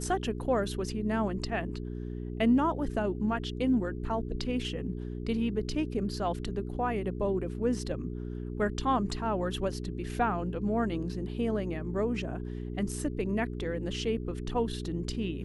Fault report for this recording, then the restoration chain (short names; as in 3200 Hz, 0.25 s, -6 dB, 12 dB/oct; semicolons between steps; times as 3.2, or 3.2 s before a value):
hum 60 Hz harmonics 7 -37 dBFS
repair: de-hum 60 Hz, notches 7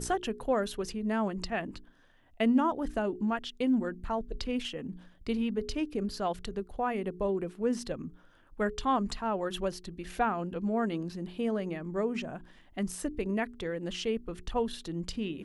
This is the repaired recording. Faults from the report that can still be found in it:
none